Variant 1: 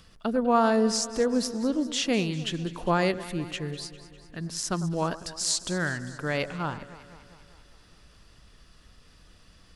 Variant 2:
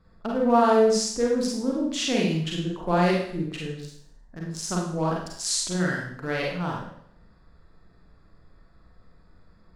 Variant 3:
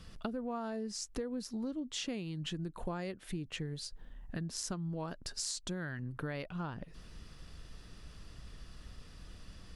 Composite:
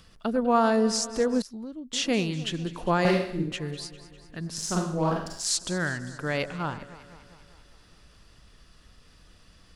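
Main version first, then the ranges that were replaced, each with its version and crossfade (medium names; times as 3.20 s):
1
1.42–1.93 s: from 3
3.05–3.52 s: from 2
4.58–5.57 s: from 2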